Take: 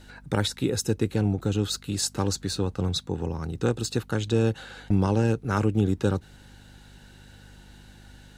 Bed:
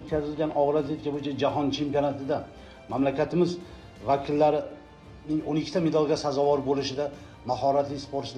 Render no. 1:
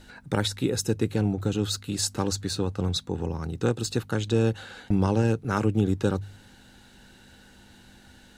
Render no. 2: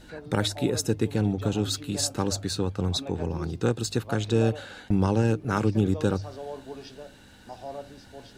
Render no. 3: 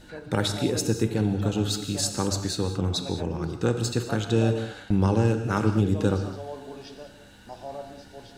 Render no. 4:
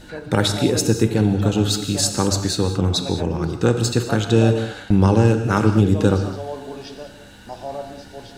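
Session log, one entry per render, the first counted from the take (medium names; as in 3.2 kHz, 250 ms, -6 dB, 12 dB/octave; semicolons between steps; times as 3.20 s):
de-hum 50 Hz, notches 3
add bed -14.5 dB
gated-style reverb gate 240 ms flat, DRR 7 dB
trim +7 dB; peak limiter -3 dBFS, peak gain reduction 1 dB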